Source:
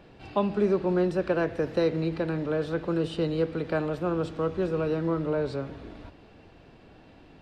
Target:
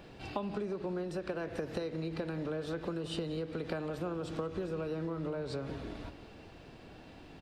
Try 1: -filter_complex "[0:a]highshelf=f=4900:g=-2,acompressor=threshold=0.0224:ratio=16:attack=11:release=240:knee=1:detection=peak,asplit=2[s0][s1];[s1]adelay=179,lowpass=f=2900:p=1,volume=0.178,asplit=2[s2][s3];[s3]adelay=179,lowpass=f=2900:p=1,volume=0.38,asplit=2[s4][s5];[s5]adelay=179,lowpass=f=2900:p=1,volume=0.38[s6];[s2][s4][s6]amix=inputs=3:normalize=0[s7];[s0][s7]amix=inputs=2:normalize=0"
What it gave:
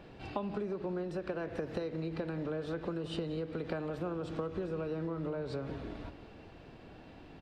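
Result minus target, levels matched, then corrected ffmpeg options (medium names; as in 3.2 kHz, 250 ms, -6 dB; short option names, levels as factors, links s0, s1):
8 kHz band -7.0 dB
-filter_complex "[0:a]highshelf=f=4900:g=8.5,acompressor=threshold=0.0224:ratio=16:attack=11:release=240:knee=1:detection=peak,asplit=2[s0][s1];[s1]adelay=179,lowpass=f=2900:p=1,volume=0.178,asplit=2[s2][s3];[s3]adelay=179,lowpass=f=2900:p=1,volume=0.38,asplit=2[s4][s5];[s5]adelay=179,lowpass=f=2900:p=1,volume=0.38[s6];[s2][s4][s6]amix=inputs=3:normalize=0[s7];[s0][s7]amix=inputs=2:normalize=0"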